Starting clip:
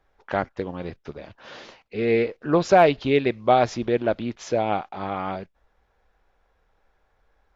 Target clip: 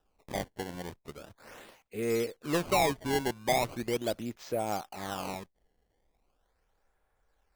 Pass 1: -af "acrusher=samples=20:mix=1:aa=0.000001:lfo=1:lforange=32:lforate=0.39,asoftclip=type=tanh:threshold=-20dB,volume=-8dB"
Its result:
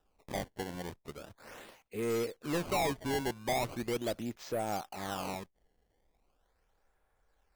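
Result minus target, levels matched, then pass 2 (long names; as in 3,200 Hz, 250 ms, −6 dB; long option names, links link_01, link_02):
soft clipping: distortion +7 dB
-af "acrusher=samples=20:mix=1:aa=0.000001:lfo=1:lforange=32:lforate=0.39,asoftclip=type=tanh:threshold=-12dB,volume=-8dB"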